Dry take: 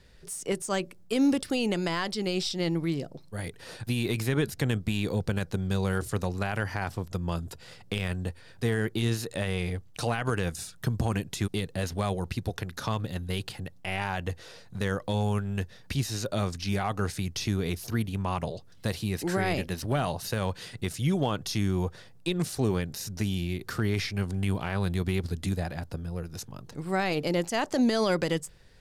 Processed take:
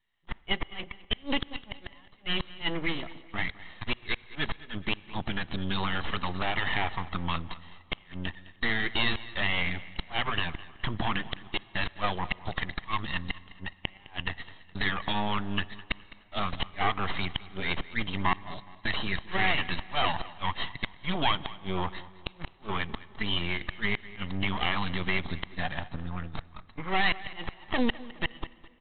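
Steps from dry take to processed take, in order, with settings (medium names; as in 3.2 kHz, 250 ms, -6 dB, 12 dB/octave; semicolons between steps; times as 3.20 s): coarse spectral quantiser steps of 15 dB; de-esser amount 60%; spectral noise reduction 14 dB; gate -41 dBFS, range -16 dB; tilt EQ +4.5 dB/octave; comb 1 ms, depth 88%; in parallel at -0.5 dB: compression 8:1, threshold -36 dBFS, peak gain reduction 18.5 dB; on the sum: half-wave rectifier; inverted gate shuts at -15 dBFS, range -34 dB; feedback delay 209 ms, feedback 39%, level -18.5 dB; on a send at -21.5 dB: reverberation RT60 2.8 s, pre-delay 35 ms; on the sum: resampled via 8 kHz; trim +6 dB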